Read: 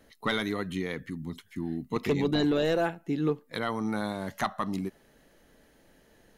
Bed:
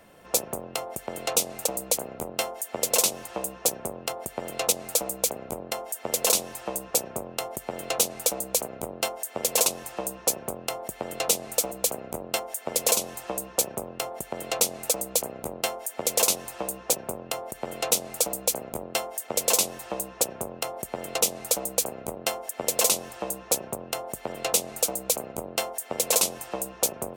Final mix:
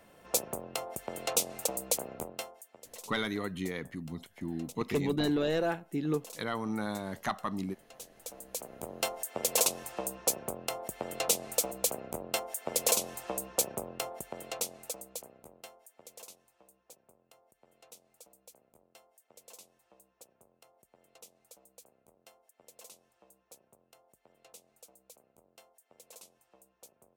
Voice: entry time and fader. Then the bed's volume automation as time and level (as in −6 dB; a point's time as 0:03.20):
2.85 s, −3.5 dB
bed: 0:02.20 −5 dB
0:02.82 −26 dB
0:07.95 −26 dB
0:08.99 −4.5 dB
0:13.96 −4.5 dB
0:16.53 −31 dB